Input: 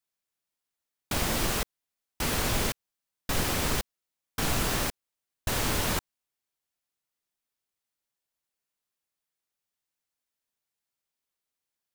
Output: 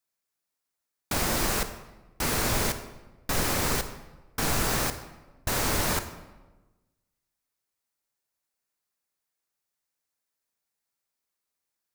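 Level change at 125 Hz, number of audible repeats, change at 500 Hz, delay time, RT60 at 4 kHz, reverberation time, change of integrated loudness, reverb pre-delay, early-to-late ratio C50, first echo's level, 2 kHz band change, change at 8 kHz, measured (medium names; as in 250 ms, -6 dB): +0.5 dB, no echo, +2.0 dB, no echo, 0.75 s, 1.2 s, +1.5 dB, 28 ms, 11.0 dB, no echo, +1.5 dB, +2.5 dB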